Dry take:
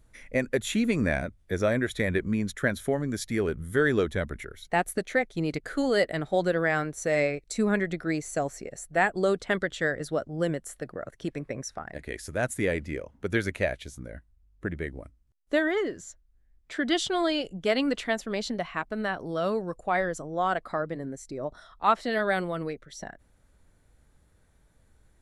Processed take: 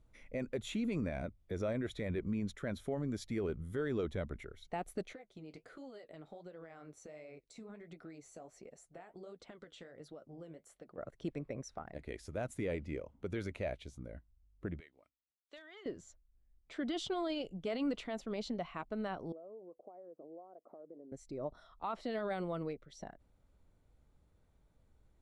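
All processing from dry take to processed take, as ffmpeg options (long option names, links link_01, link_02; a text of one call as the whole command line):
ffmpeg -i in.wav -filter_complex "[0:a]asettb=1/sr,asplit=3[link_01][link_02][link_03];[link_01]atrim=end=5.134[link_04];[link_02]atrim=start=5.13:end=10.98,asetpts=PTS-STARTPTS,afade=type=in:duration=0.004:curve=qsin,afade=type=out:start_time=5.846:duration=0.004:curve=qsin,highpass=frequency=190:poles=1,acompressor=threshold=-35dB:ratio=16:attack=3.2:release=140:knee=1:detection=peak,flanger=delay=3.4:depth=9.7:regen=-50:speed=1.4:shape=triangular[link_05];[link_03]atrim=start=10.976[link_06];[link_04][link_05]acrossfade=duration=0.004:curve1=hsin:curve2=qsin[link_07];[link_07][link_06]acrossfade=duration=0.004:curve1=qsin:curve2=hsin,asettb=1/sr,asplit=3[link_08][link_09][link_10];[link_08]atrim=end=14.804[link_11];[link_09]atrim=start=14.8:end=15.86,asetpts=PTS-STARTPTS,afade=type=in:duration=0.004:curve=qsin,afade=type=out:start_time=1.056:duration=0.004:curve=qsin,bandpass=frequency=3900:width_type=q:width=0.91,asoftclip=type=hard:threshold=-28dB,acompressor=threshold=-42dB:ratio=3:attack=3.2:release=140:knee=1:detection=peak[link_12];[link_10]atrim=start=15.856[link_13];[link_11][link_12]acrossfade=duration=0.004:curve1=hsin:curve2=qsin[link_14];[link_14][link_13]acrossfade=duration=0.004:curve1=qsin:curve2=hsin,asettb=1/sr,asplit=3[link_15][link_16][link_17];[link_15]atrim=end=19.324[link_18];[link_16]atrim=start=19.32:end=21.12,asetpts=PTS-STARTPTS,afade=type=in:duration=0.004:curve=qsin,afade=type=out:start_time=1.796:duration=0.004:curve=qsin,acompressor=threshold=-38dB:ratio=16:attack=3.2:release=140:knee=1:detection=peak,acrusher=bits=8:mode=log:mix=0:aa=0.000001,asuperpass=centerf=450:order=4:qfactor=1.1[link_19];[link_17]atrim=start=21.116[link_20];[link_18][link_19]acrossfade=duration=0.004:curve1=hsin:curve2=qsin[link_21];[link_21][link_20]acrossfade=duration=0.004:curve1=qsin:curve2=hsin,equalizer=frequency=1700:width=3.1:gain=-9,alimiter=limit=-21.5dB:level=0:latency=1:release=17,aemphasis=mode=reproduction:type=50fm,volume=-7dB" out.wav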